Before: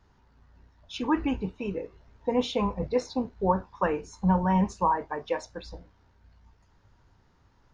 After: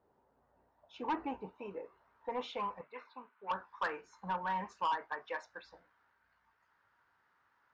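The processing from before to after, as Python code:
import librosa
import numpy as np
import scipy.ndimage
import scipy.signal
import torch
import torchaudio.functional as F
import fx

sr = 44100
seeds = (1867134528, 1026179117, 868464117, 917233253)

y = fx.filter_sweep_bandpass(x, sr, from_hz=520.0, to_hz=1500.0, start_s=0.01, end_s=2.78, q=1.9)
y = 10.0 ** (-28.5 / 20.0) * np.tanh(y / 10.0 ** (-28.5 / 20.0))
y = fx.cabinet(y, sr, low_hz=340.0, low_slope=12, high_hz=3000.0, hz=(340.0, 520.0, 740.0, 1100.0, 1800.0, 2600.0), db=(-10, -10, -10, 4, -7, 3), at=(2.81, 3.51))
y = F.gain(torch.from_numpy(y), 1.0).numpy()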